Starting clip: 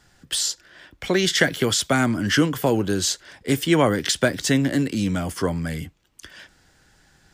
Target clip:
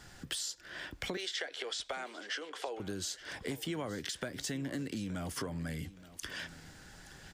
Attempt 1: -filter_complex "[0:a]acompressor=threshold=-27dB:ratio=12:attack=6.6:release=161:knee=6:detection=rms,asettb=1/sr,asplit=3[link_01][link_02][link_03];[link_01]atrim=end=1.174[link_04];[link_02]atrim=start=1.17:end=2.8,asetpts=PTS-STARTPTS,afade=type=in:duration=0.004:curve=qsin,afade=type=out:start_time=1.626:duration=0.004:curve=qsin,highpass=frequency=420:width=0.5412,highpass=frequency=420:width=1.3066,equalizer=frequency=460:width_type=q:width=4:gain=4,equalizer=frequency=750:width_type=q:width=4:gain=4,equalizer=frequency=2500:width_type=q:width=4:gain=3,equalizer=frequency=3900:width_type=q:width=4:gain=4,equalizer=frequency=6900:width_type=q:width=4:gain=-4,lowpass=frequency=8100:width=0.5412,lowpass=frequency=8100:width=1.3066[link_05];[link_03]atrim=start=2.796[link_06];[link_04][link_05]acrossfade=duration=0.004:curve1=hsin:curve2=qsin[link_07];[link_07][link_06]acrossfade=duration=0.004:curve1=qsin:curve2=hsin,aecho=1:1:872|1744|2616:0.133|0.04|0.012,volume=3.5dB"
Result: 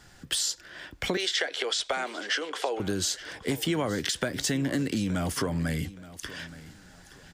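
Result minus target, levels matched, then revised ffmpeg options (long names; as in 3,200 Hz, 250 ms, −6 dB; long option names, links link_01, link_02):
downward compressor: peak gain reduction −10 dB
-filter_complex "[0:a]acompressor=threshold=-38dB:ratio=12:attack=6.6:release=161:knee=6:detection=rms,asettb=1/sr,asplit=3[link_01][link_02][link_03];[link_01]atrim=end=1.174[link_04];[link_02]atrim=start=1.17:end=2.8,asetpts=PTS-STARTPTS,afade=type=in:duration=0.004:curve=qsin,afade=type=out:start_time=1.626:duration=0.004:curve=qsin,highpass=frequency=420:width=0.5412,highpass=frequency=420:width=1.3066,equalizer=frequency=460:width_type=q:width=4:gain=4,equalizer=frequency=750:width_type=q:width=4:gain=4,equalizer=frequency=2500:width_type=q:width=4:gain=3,equalizer=frequency=3900:width_type=q:width=4:gain=4,equalizer=frequency=6900:width_type=q:width=4:gain=-4,lowpass=frequency=8100:width=0.5412,lowpass=frequency=8100:width=1.3066[link_05];[link_03]atrim=start=2.796[link_06];[link_04][link_05]acrossfade=duration=0.004:curve1=hsin:curve2=qsin[link_07];[link_07][link_06]acrossfade=duration=0.004:curve1=qsin:curve2=hsin,aecho=1:1:872|1744|2616:0.133|0.04|0.012,volume=3.5dB"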